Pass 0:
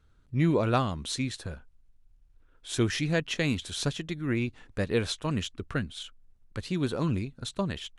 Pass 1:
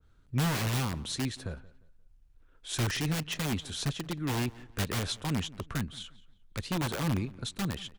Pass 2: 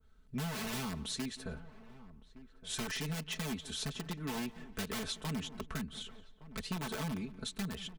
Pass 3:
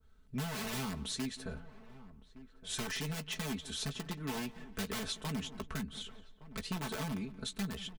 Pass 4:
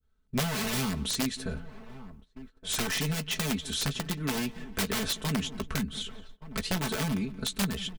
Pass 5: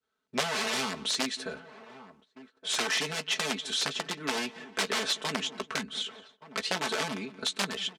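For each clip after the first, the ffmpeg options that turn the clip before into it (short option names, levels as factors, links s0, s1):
-filter_complex "[0:a]acrossover=split=210|3200[s0][s1][s2];[s1]aeval=exprs='(mod(25.1*val(0)+1,2)-1)/25.1':c=same[s3];[s0][s3][s2]amix=inputs=3:normalize=0,asplit=2[s4][s5];[s5]adelay=176,lowpass=f=3200:p=1,volume=0.1,asplit=2[s6][s7];[s7]adelay=176,lowpass=f=3200:p=1,volume=0.32,asplit=2[s8][s9];[s9]adelay=176,lowpass=f=3200:p=1,volume=0.32[s10];[s4][s6][s8][s10]amix=inputs=4:normalize=0,adynamicequalizer=threshold=0.00355:dfrequency=1600:dqfactor=0.7:tfrequency=1600:tqfactor=0.7:attack=5:release=100:ratio=0.375:range=1.5:mode=cutabove:tftype=highshelf"
-filter_complex "[0:a]aecho=1:1:4.6:0.89,acompressor=threshold=0.0316:ratio=6,asplit=2[s0][s1];[s1]adelay=1166,volume=0.158,highshelf=f=4000:g=-26.2[s2];[s0][s2]amix=inputs=2:normalize=0,volume=0.596"
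-filter_complex "[0:a]asplit=2[s0][s1];[s1]adelay=15,volume=0.251[s2];[s0][s2]amix=inputs=2:normalize=0"
-af "agate=range=0.141:threshold=0.002:ratio=16:detection=peak,adynamicequalizer=threshold=0.00141:dfrequency=890:dqfactor=0.91:tfrequency=890:tqfactor=0.91:attack=5:release=100:ratio=0.375:range=2.5:mode=cutabove:tftype=bell,aeval=exprs='(mod(29.9*val(0)+1,2)-1)/29.9':c=same,volume=2.66"
-af "highpass=410,lowpass=6800,volume=1.5"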